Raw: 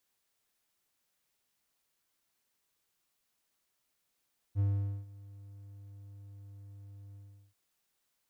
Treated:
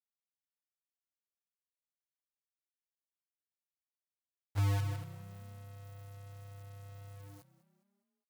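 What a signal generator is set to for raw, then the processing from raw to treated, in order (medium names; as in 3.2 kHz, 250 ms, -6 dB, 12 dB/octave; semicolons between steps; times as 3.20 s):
ADSR triangle 99.9 Hz, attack 45 ms, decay 457 ms, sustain -22.5 dB, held 2.60 s, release 388 ms -23 dBFS
companded quantiser 4-bit; frequency-shifting echo 205 ms, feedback 48%, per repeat +32 Hz, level -17.5 dB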